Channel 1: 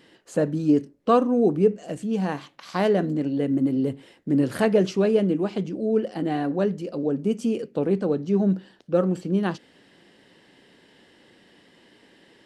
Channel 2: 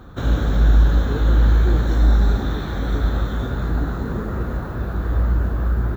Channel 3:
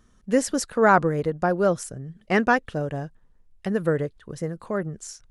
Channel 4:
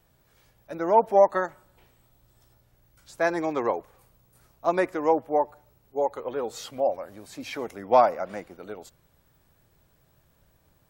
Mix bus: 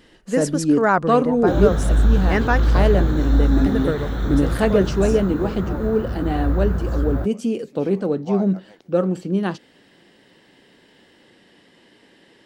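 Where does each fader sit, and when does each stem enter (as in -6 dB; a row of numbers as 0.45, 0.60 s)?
+2.0, -2.0, -0.5, -14.0 dB; 0.00, 1.30, 0.00, 0.35 s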